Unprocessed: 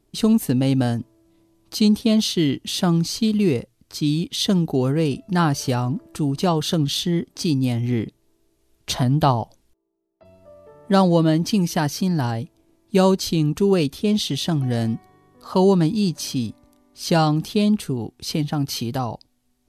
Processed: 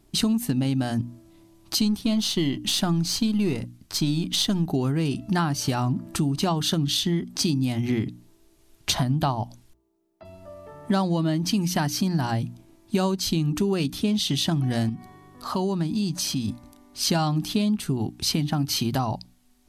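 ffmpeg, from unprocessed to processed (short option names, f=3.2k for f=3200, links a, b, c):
-filter_complex "[0:a]asettb=1/sr,asplit=3[a][b][c];[a]atrim=end=1.814[d];[b]atrim=start=1.81:end=4.68,asetpts=PTS-STARTPTS,afade=t=in:d=0.004:c=qsin,afade=t=out:st=2.866:d=0.004:c=qsin,aeval=exprs='if(lt(val(0),0),0.708*val(0),val(0))':c=same[e];[c]atrim=start=4.676[f];[d][e]acrossfade=d=0.004:c1=hsin:c2=qsin[g];[g][f]acrossfade=d=0.004:c1=qsin:c2=hsin,asettb=1/sr,asplit=3[h][i][j];[h]atrim=end=14.894[k];[i]atrim=start=14.89:end=16.48,asetpts=PTS-STARTPTS,afade=t=in:d=0.004:c=qsin,afade=t=out:st=1.586:d=0.004:c=qsin,acompressor=threshold=-34dB:ratio=2:attack=3.2:release=140:knee=1:detection=peak[l];[j]atrim=start=16.476[m];[k][l]acrossfade=d=0.004:c1=hsin:c2=qsin[n];[n][m]acrossfade=d=0.004:c1=qsin:c2=hsin,equalizer=f=480:w=3.4:g=-10.5,bandreject=f=60:t=h:w=6,bandreject=f=120:t=h:w=6,bandreject=f=180:t=h:w=6,bandreject=f=240:t=h:w=6,bandreject=f=300:t=h:w=6,acompressor=threshold=-28dB:ratio=6,volume=7dB"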